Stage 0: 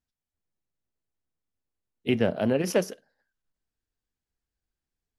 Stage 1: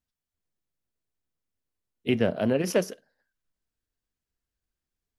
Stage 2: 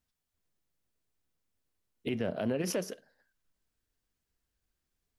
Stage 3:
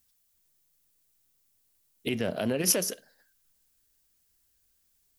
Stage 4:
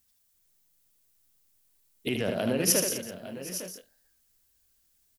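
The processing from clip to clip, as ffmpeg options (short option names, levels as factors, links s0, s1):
-af "bandreject=f=820:w=14"
-af "acompressor=threshold=0.0251:ratio=3,alimiter=level_in=1.26:limit=0.0631:level=0:latency=1:release=53,volume=0.794,volume=1.5"
-af "crystalizer=i=3.5:c=0,volume=1.33"
-af "aecho=1:1:77|206|769|856|878:0.562|0.224|0.106|0.224|0.141"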